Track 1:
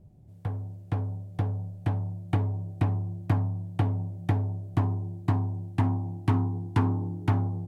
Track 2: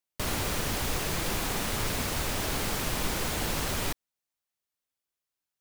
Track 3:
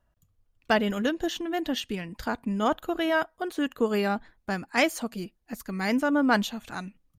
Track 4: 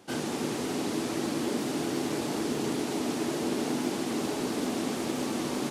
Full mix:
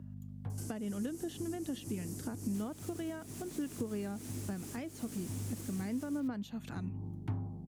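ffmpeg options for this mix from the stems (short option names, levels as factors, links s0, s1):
-filter_complex "[0:a]volume=0.266[s0];[1:a]tiltshelf=f=970:g=-5.5,adelay=2350,volume=0.211[s1];[2:a]volume=1.06,asplit=2[s2][s3];[3:a]aexciter=amount=7.1:drive=8.6:freq=5400,adelay=500,volume=0.224[s4];[s3]apad=whole_len=338312[s5];[s0][s5]sidechaincompress=threshold=0.01:ratio=8:attack=16:release=286[s6];[s1][s2][s4]amix=inputs=3:normalize=0,aeval=exprs='val(0)+0.01*(sin(2*PI*50*n/s)+sin(2*PI*2*50*n/s)/2+sin(2*PI*3*50*n/s)/3+sin(2*PI*4*50*n/s)/4+sin(2*PI*5*50*n/s)/5)':c=same,acompressor=threshold=0.0251:ratio=5,volume=1[s7];[s6][s7]amix=inputs=2:normalize=0,highpass=f=78:w=0.5412,highpass=f=78:w=1.3066,acrossover=split=390[s8][s9];[s9]acompressor=threshold=0.00251:ratio=3[s10];[s8][s10]amix=inputs=2:normalize=0"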